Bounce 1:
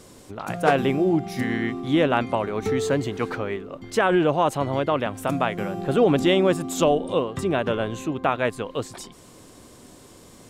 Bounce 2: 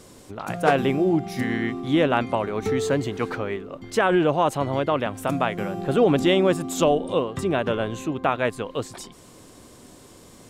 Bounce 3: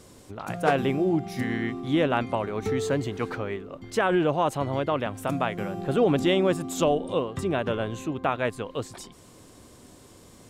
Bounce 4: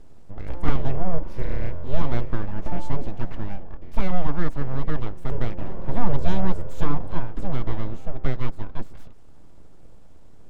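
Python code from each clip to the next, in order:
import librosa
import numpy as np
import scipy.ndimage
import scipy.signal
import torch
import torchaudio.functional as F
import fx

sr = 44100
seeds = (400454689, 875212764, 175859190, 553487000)

y1 = x
y2 = fx.peak_eq(y1, sr, hz=77.0, db=4.0, octaves=1.3)
y2 = F.gain(torch.from_numpy(y2), -3.5).numpy()
y3 = fx.hum_notches(y2, sr, base_hz=50, count=3)
y3 = np.abs(y3)
y3 = fx.tilt_eq(y3, sr, slope=-3.5)
y3 = F.gain(torch.from_numpy(y3), -5.0).numpy()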